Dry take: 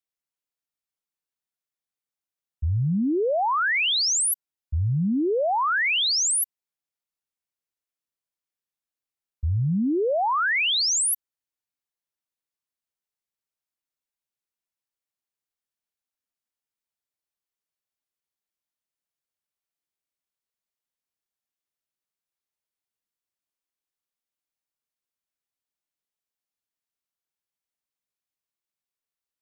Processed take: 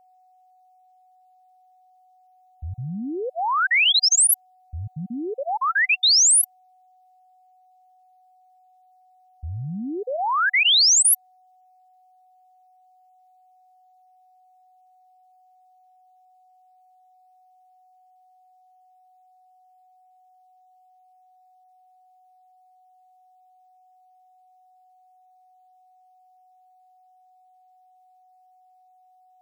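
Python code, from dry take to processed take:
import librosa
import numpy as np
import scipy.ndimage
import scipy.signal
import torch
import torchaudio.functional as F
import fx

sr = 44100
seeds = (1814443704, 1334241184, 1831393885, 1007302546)

y = fx.spec_dropout(x, sr, seeds[0], share_pct=24)
y = fx.tilt_shelf(y, sr, db=-7.5, hz=900.0)
y = y + 10.0 ** (-55.0 / 20.0) * np.sin(2.0 * np.pi * 740.0 * np.arange(len(y)) / sr)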